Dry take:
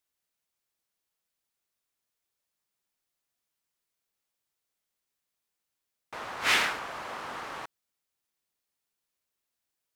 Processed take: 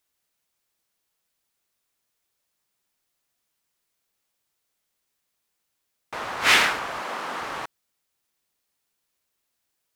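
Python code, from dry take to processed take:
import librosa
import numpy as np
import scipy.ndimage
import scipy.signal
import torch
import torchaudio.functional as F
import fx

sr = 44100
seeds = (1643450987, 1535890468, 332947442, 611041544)

y = fx.highpass(x, sr, hz=160.0, slope=24, at=(7.0, 7.41))
y = F.gain(torch.from_numpy(y), 7.0).numpy()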